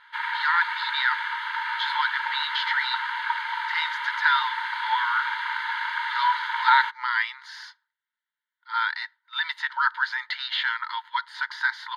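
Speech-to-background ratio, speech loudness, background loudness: 2.0 dB, -26.5 LUFS, -28.5 LUFS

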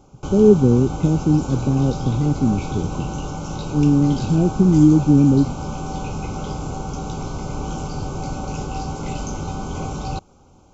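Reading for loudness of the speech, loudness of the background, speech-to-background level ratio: -17.0 LUFS, -28.5 LUFS, 11.5 dB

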